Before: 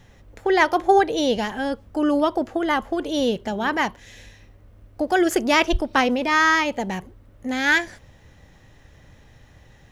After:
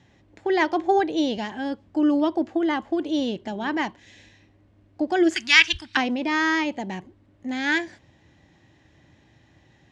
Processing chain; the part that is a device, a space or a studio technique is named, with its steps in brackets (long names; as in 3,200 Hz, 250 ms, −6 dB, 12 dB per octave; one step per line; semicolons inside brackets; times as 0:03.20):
0:05.35–0:05.97: drawn EQ curve 110 Hz 0 dB, 540 Hz −26 dB, 1,600 Hz +11 dB
car door speaker (loudspeaker in its box 100–7,200 Hz, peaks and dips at 320 Hz +8 dB, 480 Hz −7 dB, 1,300 Hz −6 dB, 5,900 Hz −4 dB)
level −4 dB